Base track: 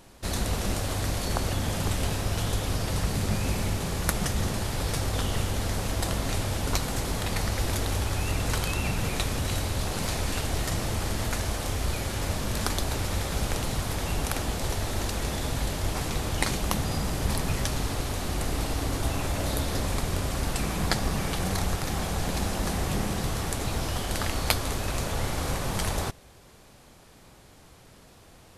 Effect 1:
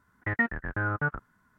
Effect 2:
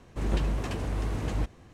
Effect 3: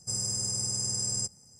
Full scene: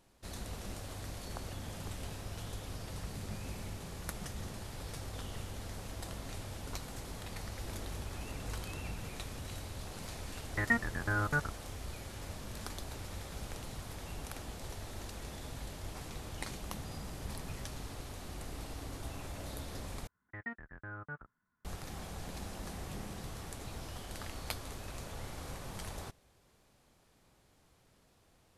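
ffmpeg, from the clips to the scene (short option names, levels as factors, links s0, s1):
-filter_complex "[1:a]asplit=2[s0][s1];[0:a]volume=0.178[s2];[2:a]alimiter=limit=0.0891:level=0:latency=1:release=71[s3];[s2]asplit=2[s4][s5];[s4]atrim=end=20.074[s6];[s1]atrim=end=1.58,asetpts=PTS-STARTPTS,volume=0.15[s7];[s5]atrim=start=21.646[s8];[s3]atrim=end=1.73,asetpts=PTS-STARTPTS,volume=0.15,afade=t=in:d=0.004:c=hsin,afade=t=out:st=1.726:d=0.004:c=hsin,adelay=7500[s9];[s0]atrim=end=1.58,asetpts=PTS-STARTPTS,volume=0.668,afade=t=in:d=0.004:c=hsin,afade=t=out:st=1.576:d=0.004:c=hsin,adelay=10310[s10];[s6][s7]acrossfade=d=0.004:c1=hsin:c2=hsin[s11];[s11][s8]acrossfade=d=0.004:c1=hsin:c2=hsin[s12];[s12][s9][s10]amix=inputs=3:normalize=0"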